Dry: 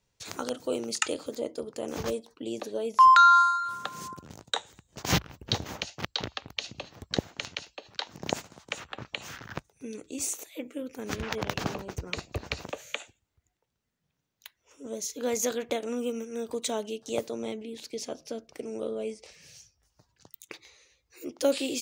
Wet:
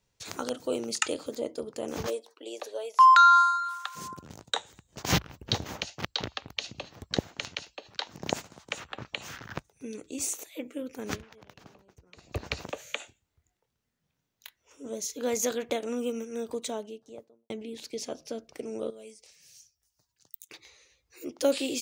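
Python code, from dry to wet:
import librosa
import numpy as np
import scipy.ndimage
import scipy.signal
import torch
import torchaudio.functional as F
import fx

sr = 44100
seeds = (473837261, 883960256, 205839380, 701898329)

y = fx.highpass(x, sr, hz=fx.line((2.06, 320.0), (3.95, 980.0)), slope=24, at=(2.06, 3.95), fade=0.02)
y = fx.doubler(y, sr, ms=25.0, db=-9.5, at=(12.97, 14.91))
y = fx.studio_fade_out(y, sr, start_s=16.32, length_s=1.18)
y = fx.pre_emphasis(y, sr, coefficient=0.8, at=(18.9, 20.52))
y = fx.edit(y, sr, fx.fade_down_up(start_s=11.15, length_s=1.12, db=-21.5, fade_s=0.34, curve='exp'), tone=tone)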